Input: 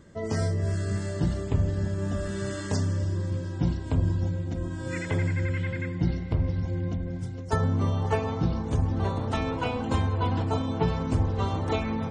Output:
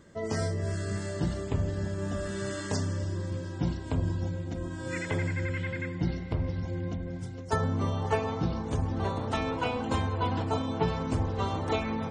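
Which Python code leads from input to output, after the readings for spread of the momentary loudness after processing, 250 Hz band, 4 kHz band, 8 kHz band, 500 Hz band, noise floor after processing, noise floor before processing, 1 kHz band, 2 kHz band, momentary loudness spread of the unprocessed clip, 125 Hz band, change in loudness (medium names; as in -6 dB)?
5 LU, -3.0 dB, 0.0 dB, 0.0 dB, -1.0 dB, -38 dBFS, -35 dBFS, -0.5 dB, 0.0 dB, 5 LU, -4.5 dB, -3.5 dB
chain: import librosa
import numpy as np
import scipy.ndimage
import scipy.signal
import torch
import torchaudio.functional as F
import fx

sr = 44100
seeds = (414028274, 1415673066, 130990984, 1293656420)

y = fx.low_shelf(x, sr, hz=210.0, db=-6.0)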